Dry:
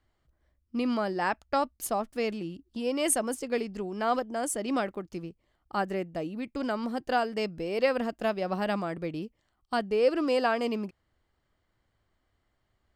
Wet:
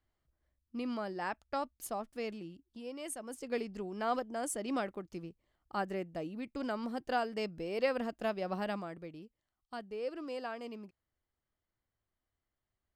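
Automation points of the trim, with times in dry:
2.36 s -9 dB
3.17 s -16.5 dB
3.51 s -6 dB
8.59 s -6 dB
9.19 s -14.5 dB

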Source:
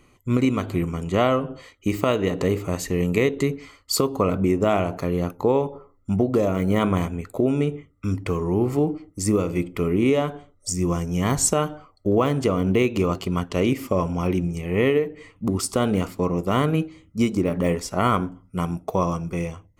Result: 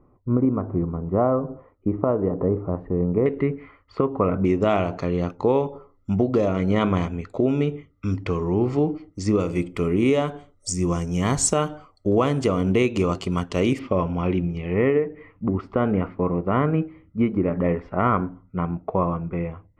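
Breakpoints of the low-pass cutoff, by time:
low-pass 24 dB/octave
1.1 kHz
from 3.26 s 2.1 kHz
from 4.45 s 5.7 kHz
from 9.40 s 9.4 kHz
from 13.79 s 3.7 kHz
from 14.74 s 2.1 kHz

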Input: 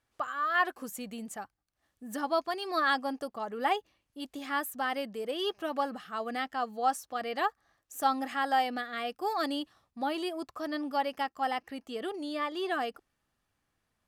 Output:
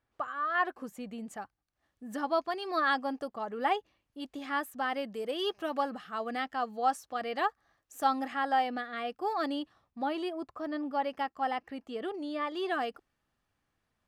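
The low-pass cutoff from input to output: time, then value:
low-pass 6 dB/octave
1.8 kHz
from 1.27 s 3.6 kHz
from 5.10 s 9.1 kHz
from 5.82 s 5.1 kHz
from 8.28 s 2.5 kHz
from 10.30 s 1.4 kHz
from 11.02 s 2.4 kHz
from 12.47 s 5.1 kHz

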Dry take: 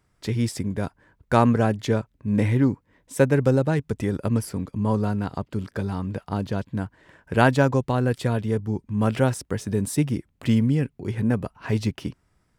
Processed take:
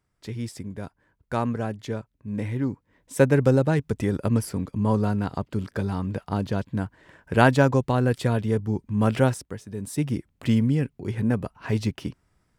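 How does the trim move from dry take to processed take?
2.51 s -8 dB
3.23 s +0.5 dB
9.27 s +0.5 dB
9.66 s -12 dB
10.11 s -1 dB

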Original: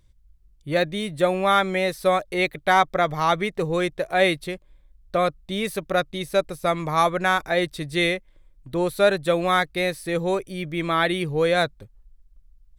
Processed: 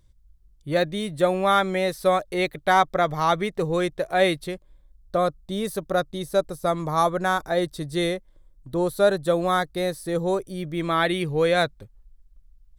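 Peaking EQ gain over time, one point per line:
peaking EQ 2.4 kHz 0.82 oct
4.44 s -5 dB
5.17 s -13 dB
10.46 s -13 dB
11.14 s -1.5 dB

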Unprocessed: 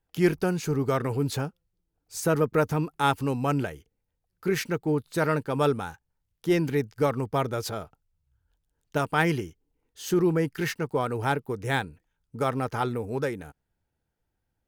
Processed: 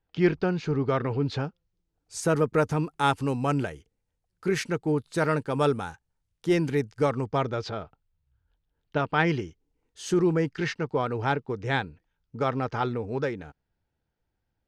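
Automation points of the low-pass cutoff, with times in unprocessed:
low-pass 24 dB/octave
1.28 s 4.5 kHz
2.18 s 10 kHz
6.93 s 10 kHz
7.77 s 4.3 kHz
9.03 s 4.3 kHz
10.03 s 9.8 kHz
10.64 s 5.6 kHz

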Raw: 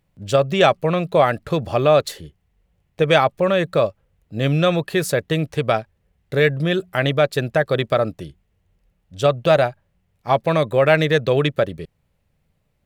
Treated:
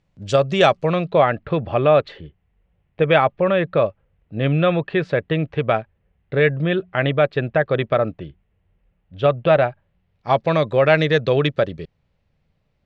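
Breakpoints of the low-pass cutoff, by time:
low-pass 24 dB/octave
0.79 s 7.2 kHz
1.27 s 3.1 kHz
9.67 s 3.1 kHz
10.32 s 5.5 kHz

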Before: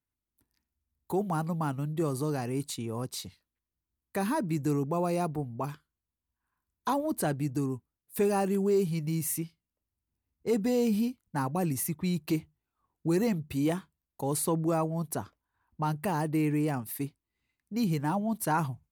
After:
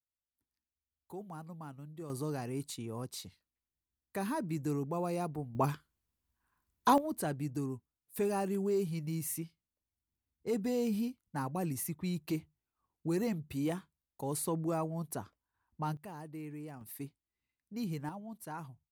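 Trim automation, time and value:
-15.5 dB
from 2.10 s -6 dB
from 5.55 s +3.5 dB
from 6.98 s -6 dB
from 15.97 s -16.5 dB
from 16.81 s -9 dB
from 18.09 s -15.5 dB

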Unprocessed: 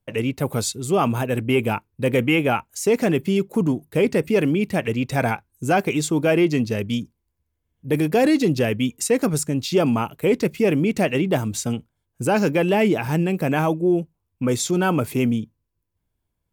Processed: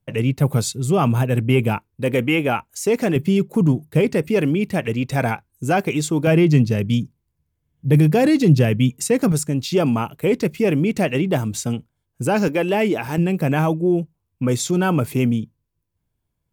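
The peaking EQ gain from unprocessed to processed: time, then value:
peaking EQ 140 Hz 0.82 oct
+10 dB
from 1.77 s 0 dB
from 3.16 s +9.5 dB
from 4.01 s +3 dB
from 6.27 s +13.5 dB
from 9.32 s +3.5 dB
from 12.48 s -6 dB
from 13.18 s +5.5 dB

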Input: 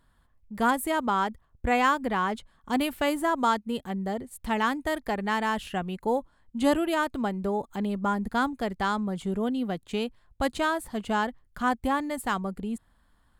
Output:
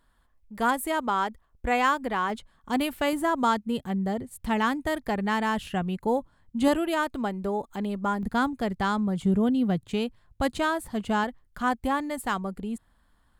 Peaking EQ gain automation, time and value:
peaking EQ 120 Hz 1.5 oct
-7.5 dB
from 2.30 s 0 dB
from 3.13 s +7.5 dB
from 6.68 s -2.5 dB
from 8.23 s +7.5 dB
from 9.23 s +14.5 dB
from 9.90 s +6.5 dB
from 11.24 s -1 dB

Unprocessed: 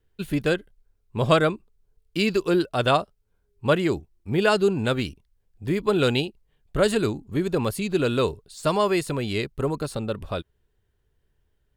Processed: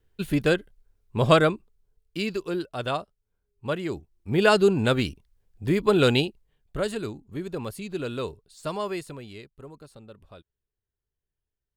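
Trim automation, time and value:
1.39 s +1 dB
2.48 s -8 dB
3.82 s -8 dB
4.47 s +1.5 dB
6.24 s +1.5 dB
6.93 s -8.5 dB
8.93 s -8.5 dB
9.50 s -18.5 dB

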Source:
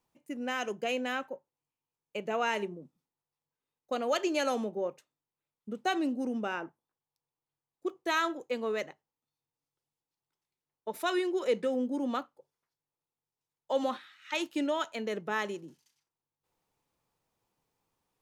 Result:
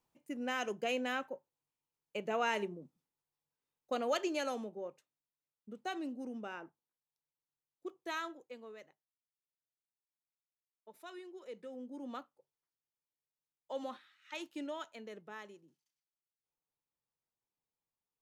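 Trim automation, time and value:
4.02 s -3 dB
4.76 s -10 dB
8.14 s -10 dB
8.77 s -19.5 dB
11.48 s -19.5 dB
12.16 s -11 dB
14.74 s -11 dB
15.59 s -18 dB

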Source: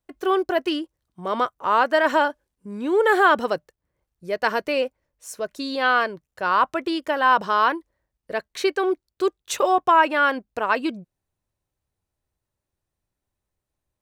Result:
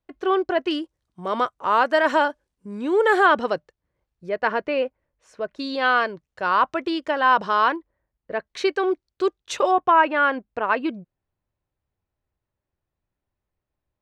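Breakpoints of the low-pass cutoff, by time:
4.1 kHz
from 0.71 s 8.5 kHz
from 3.26 s 4.9 kHz
from 4.29 s 2.6 kHz
from 5.59 s 5.7 kHz
from 7.76 s 2.3 kHz
from 8.47 s 5.7 kHz
from 9.71 s 2.8 kHz

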